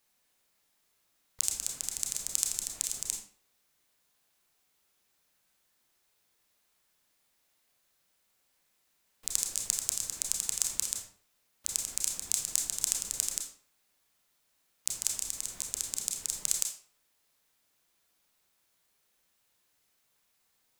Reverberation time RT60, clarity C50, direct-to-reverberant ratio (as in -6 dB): 0.50 s, 5.5 dB, 2.0 dB